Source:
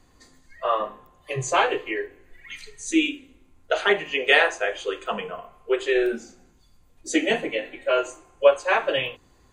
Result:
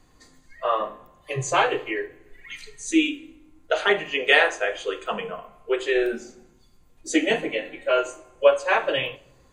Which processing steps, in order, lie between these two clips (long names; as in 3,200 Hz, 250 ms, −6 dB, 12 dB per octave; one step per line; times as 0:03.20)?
rectangular room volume 2,300 cubic metres, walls furnished, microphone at 0.51 metres